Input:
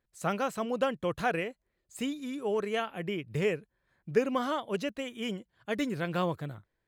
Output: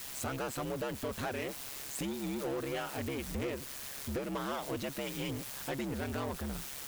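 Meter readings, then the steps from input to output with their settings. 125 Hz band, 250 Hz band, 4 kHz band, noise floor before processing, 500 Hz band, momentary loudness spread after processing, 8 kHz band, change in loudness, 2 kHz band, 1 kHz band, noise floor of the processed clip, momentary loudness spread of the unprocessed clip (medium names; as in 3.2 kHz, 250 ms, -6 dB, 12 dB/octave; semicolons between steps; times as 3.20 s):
-2.5 dB, -4.0 dB, -2.0 dB, -81 dBFS, -7.0 dB, 3 LU, +7.0 dB, -5.0 dB, -5.5 dB, -6.5 dB, -44 dBFS, 8 LU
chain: in parallel at -11 dB: word length cut 6-bit, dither triangular; on the sum: compression 4:1, threshold -34 dBFS, peak gain reduction 14 dB; ring modulator 68 Hz; power-law waveshaper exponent 0.5; trim -4 dB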